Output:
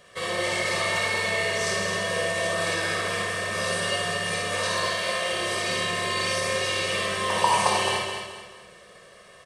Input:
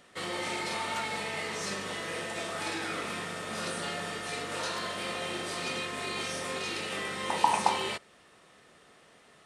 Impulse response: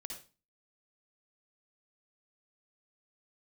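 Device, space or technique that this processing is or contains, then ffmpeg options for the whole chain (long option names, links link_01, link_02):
microphone above a desk: -filter_complex "[0:a]asettb=1/sr,asplit=3[link_01][link_02][link_03];[link_01]atrim=end=4.884[link_04];[link_02]atrim=start=4.88:end=5.33,asetpts=PTS-STARTPTS,afade=type=in:duration=0.004:curve=qsin,afade=type=out:start_time=0.446:duration=0.004:curve=qsin,highpass=frequency=430:poles=1[link_05];[link_03]atrim=start=5.326[link_06];[link_04][link_05]acrossfade=duration=0.004:curve1=hsin:curve2=qsin[link_07];[link_07][link_06]acrossfade=duration=0.004:curve1=qsin:curve2=hsin,aecho=1:1:1.8:0.77[link_08];[1:a]atrim=start_sample=2205[link_09];[link_08][link_09]afir=irnorm=-1:irlink=0,aecho=1:1:215|430|645|860:0.501|0.18|0.065|0.0234,volume=8.5dB"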